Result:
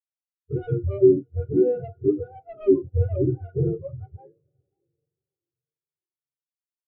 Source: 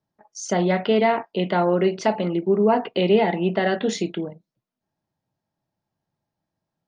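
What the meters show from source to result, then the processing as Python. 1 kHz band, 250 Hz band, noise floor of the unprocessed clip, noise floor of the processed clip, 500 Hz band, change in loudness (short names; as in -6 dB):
-23.5 dB, -3.0 dB, -85 dBFS, under -85 dBFS, -2.0 dB, -2.0 dB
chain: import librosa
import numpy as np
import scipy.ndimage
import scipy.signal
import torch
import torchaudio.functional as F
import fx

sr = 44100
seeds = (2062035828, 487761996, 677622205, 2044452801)

y = fx.octave_mirror(x, sr, pivot_hz=510.0)
y = fx.leveller(y, sr, passes=3)
y = fx.band_shelf(y, sr, hz=1000.0, db=-11.5, octaves=1.7)
y = fx.echo_diffused(y, sr, ms=560, feedback_pct=51, wet_db=-14.5)
y = fx.spectral_expand(y, sr, expansion=2.5)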